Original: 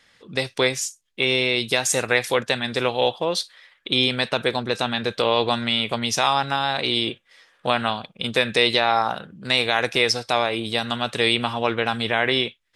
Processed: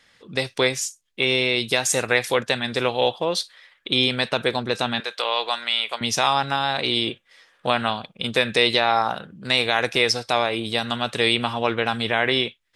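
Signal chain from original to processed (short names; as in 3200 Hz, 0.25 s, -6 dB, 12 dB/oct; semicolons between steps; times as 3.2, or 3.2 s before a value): 5–6.01 HPF 770 Hz 12 dB/oct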